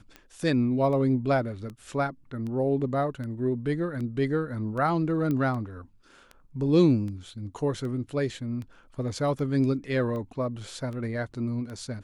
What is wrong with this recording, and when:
tick 78 rpm -27 dBFS
5.31 pop -19 dBFS

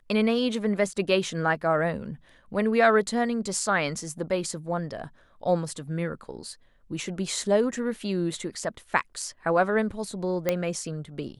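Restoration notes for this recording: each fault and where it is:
10.49 pop -10 dBFS

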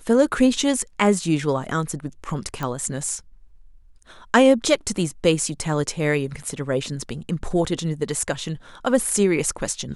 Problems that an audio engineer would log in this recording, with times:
2.63 pop -14 dBFS

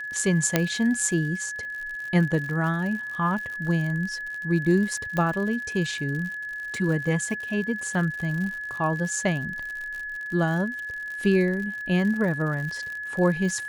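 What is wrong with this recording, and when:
crackle 76/s -32 dBFS
tone 1700 Hz -31 dBFS
0.56 pop -4 dBFS
5.17 pop -15 dBFS

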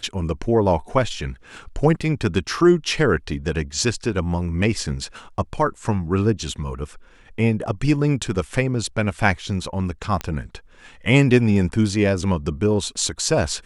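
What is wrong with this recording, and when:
10.21 pop -11 dBFS

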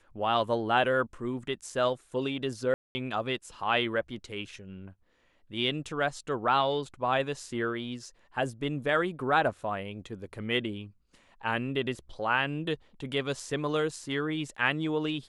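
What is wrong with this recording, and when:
2.74–2.95 gap 0.21 s

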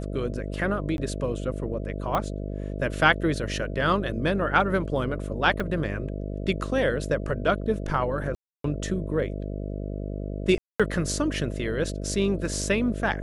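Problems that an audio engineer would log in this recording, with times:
buzz 50 Hz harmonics 13 -32 dBFS
0.97–0.98 gap 11 ms
2.15 pop -13 dBFS
5.6 gap 3.5 ms
8.35–8.64 gap 0.293 s
10.58–10.8 gap 0.216 s

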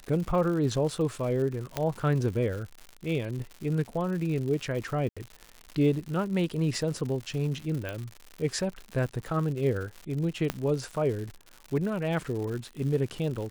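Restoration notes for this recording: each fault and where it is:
crackle 170/s -35 dBFS
1.77 pop -13 dBFS
5.09–5.17 gap 76 ms
7.89 pop -20 dBFS
10.5 pop -12 dBFS

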